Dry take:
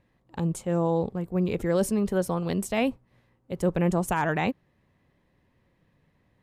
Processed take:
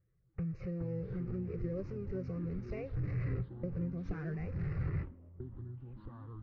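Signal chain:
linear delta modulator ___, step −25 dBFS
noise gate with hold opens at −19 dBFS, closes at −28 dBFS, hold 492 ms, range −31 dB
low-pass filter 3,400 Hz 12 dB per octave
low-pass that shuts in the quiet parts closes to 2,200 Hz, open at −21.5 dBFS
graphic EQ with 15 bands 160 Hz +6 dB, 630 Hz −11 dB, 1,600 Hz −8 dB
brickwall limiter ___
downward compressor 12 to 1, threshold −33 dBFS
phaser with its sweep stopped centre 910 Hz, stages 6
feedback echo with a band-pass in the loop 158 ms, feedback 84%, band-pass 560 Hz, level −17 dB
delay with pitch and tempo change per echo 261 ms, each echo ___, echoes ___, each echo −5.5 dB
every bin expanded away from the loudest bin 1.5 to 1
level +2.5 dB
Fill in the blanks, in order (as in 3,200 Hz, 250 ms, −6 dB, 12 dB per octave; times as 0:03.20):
32 kbit/s, −18 dBFS, −6 semitones, 2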